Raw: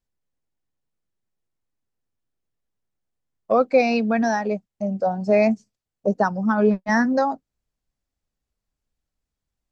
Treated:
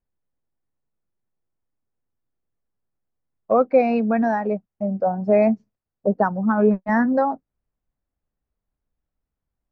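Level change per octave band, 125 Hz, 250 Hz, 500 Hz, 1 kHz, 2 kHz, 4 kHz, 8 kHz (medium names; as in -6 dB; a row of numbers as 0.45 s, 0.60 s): +1.0 dB, +1.0 dB, +1.0 dB, +0.5 dB, -3.5 dB, under -10 dB, no reading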